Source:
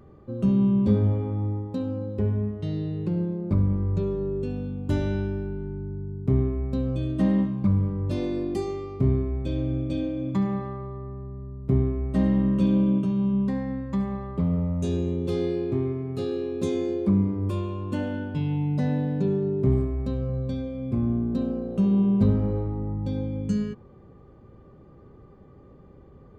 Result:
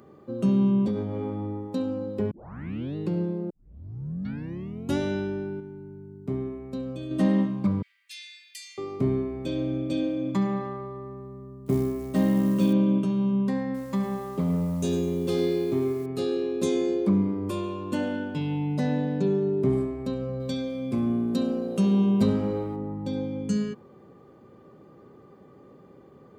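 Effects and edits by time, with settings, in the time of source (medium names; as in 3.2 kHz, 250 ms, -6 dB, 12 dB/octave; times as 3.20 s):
0.85–1.31 s: compression, threshold -22 dBFS
2.31 s: tape start 0.65 s
3.50 s: tape start 1.48 s
5.60–7.11 s: gain -5.5 dB
7.82–8.78 s: steep high-pass 1.9 kHz 48 dB/octave
11.66–12.73 s: companded quantiser 8-bit
13.64–16.06 s: bit-crushed delay 104 ms, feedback 35%, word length 8-bit, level -12.5 dB
20.40–22.76 s: treble shelf 2.3 kHz +9.5 dB
whole clip: high-pass 190 Hz 12 dB/octave; treble shelf 4.9 kHz +7.5 dB; trim +2 dB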